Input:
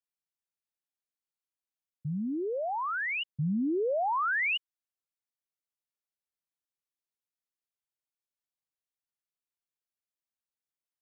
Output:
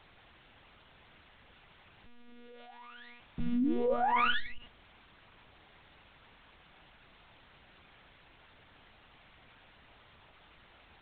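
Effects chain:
stylus tracing distortion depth 0.3 ms
noise gate with hold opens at −27 dBFS
high-shelf EQ 2,600 Hz +5.5 dB
background noise white −51 dBFS
high-frequency loss of the air 180 metres
reverb whose tail is shaped and stops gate 110 ms rising, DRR 10.5 dB
one-pitch LPC vocoder at 8 kHz 240 Hz

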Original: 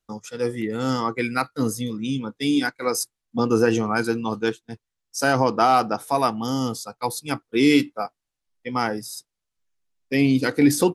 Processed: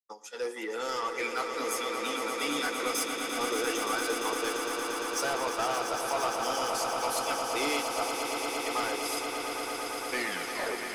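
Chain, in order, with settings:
turntable brake at the end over 0.85 s
downward expander −35 dBFS
Bessel high-pass filter 570 Hz, order 6
downward compressor 2 to 1, threshold −27 dBFS, peak gain reduction 7 dB
flanger 0.35 Hz, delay 5.7 ms, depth 6.3 ms, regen −53%
soft clipping −30 dBFS, distortion −11 dB
echo that builds up and dies away 115 ms, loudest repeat 8, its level −9 dB
on a send at −20.5 dB: convolution reverb RT60 0.40 s, pre-delay 51 ms
on the sum: every ending faded ahead of time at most 240 dB per second
level +3.5 dB

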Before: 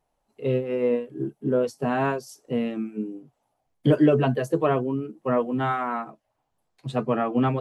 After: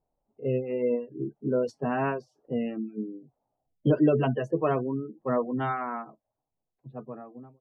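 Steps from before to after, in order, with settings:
fade-out on the ending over 2.05 s
gate on every frequency bin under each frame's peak −30 dB strong
low-pass that shuts in the quiet parts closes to 690 Hz, open at −17 dBFS
level −3.5 dB

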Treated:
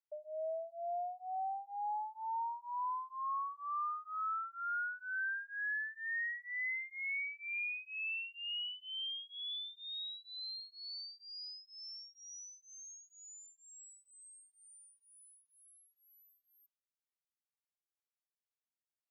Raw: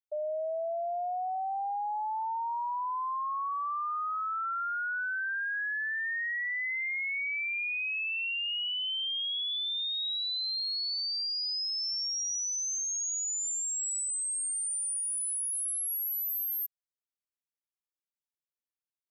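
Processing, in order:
band-pass filter 540–2,900 Hz
tremolo along a rectified sine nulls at 2.1 Hz
level −3 dB

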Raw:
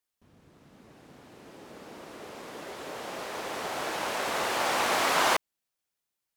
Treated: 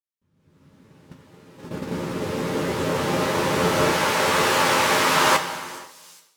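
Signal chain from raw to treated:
Butterworth band-reject 710 Hz, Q 5.9
parametric band 140 Hz +10 dB 1 octave
dense smooth reverb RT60 2.1 s, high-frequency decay 0.9×, pre-delay 0 ms, DRR 8 dB
noise gate −44 dBFS, range −13 dB
0:01.64–0:03.95: low-shelf EQ 420 Hz +7.5 dB
delay with a high-pass on its return 415 ms, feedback 54%, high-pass 5,500 Hz, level −18 dB
automatic gain control gain up to 17 dB
tuned comb filter 88 Hz, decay 0.16 s, harmonics all, mix 80%

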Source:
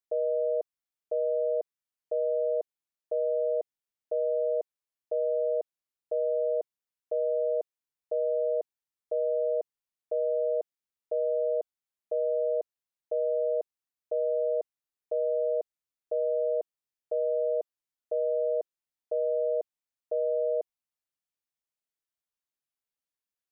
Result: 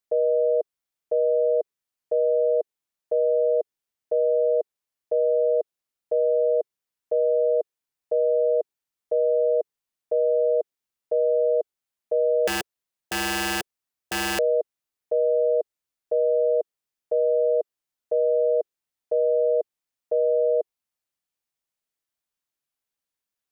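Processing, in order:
0:12.47–0:14.39: wrap-around overflow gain 26 dB
dynamic equaliser 420 Hz, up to +5 dB, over −44 dBFS, Q 2.8
level +4.5 dB

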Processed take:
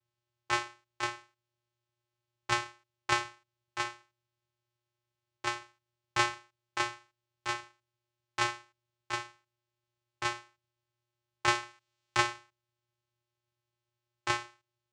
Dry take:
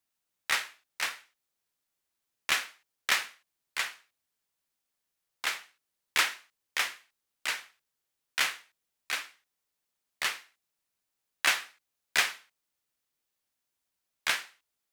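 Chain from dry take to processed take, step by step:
channel vocoder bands 4, square 119 Hz
0:11.55–0:12.31: one half of a high-frequency compander encoder only
level −1 dB

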